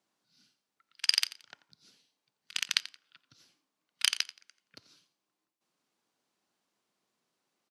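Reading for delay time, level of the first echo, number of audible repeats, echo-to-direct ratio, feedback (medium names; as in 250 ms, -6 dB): 87 ms, -17.0 dB, 2, -16.5 dB, 25%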